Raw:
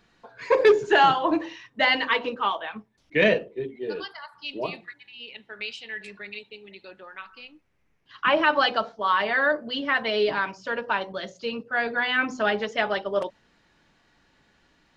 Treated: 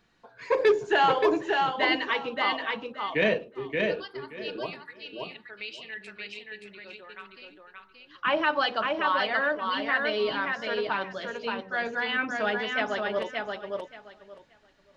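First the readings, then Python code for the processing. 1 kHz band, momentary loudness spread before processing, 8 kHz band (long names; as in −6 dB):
−3.0 dB, 21 LU, can't be measured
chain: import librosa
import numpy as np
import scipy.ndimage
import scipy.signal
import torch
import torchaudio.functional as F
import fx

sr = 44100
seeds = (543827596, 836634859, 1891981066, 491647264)

y = fx.echo_feedback(x, sr, ms=576, feedback_pct=19, wet_db=-3.5)
y = y * librosa.db_to_amplitude(-4.5)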